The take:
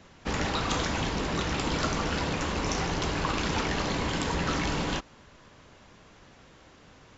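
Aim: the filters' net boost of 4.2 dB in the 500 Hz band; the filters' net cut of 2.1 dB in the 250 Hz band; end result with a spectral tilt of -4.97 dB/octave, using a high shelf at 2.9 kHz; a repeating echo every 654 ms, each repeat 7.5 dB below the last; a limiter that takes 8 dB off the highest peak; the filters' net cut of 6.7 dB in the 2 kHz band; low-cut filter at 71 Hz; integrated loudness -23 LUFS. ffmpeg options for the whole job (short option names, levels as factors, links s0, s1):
-af "highpass=71,equalizer=f=250:t=o:g=-5,equalizer=f=500:t=o:g=7,equalizer=f=2000:t=o:g=-8,highshelf=f=2900:g=-3.5,alimiter=limit=0.0708:level=0:latency=1,aecho=1:1:654|1308|1962|2616|3270:0.422|0.177|0.0744|0.0312|0.0131,volume=2.82"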